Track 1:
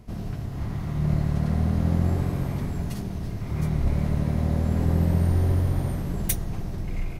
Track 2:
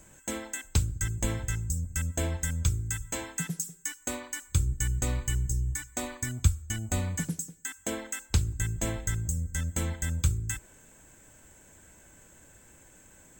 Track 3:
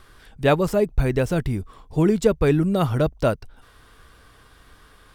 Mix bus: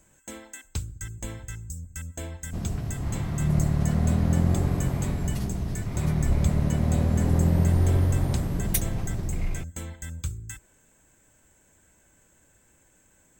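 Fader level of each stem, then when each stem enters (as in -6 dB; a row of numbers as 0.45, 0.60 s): +0.5 dB, -6.0 dB, off; 2.45 s, 0.00 s, off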